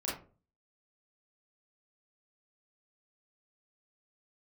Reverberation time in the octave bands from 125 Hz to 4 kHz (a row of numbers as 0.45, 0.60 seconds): 0.55, 0.50, 0.45, 0.30, 0.25, 0.20 seconds